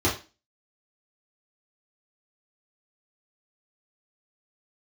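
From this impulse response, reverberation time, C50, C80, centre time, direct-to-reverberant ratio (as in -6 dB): 0.30 s, 9.0 dB, 15.0 dB, 34 ms, -7.5 dB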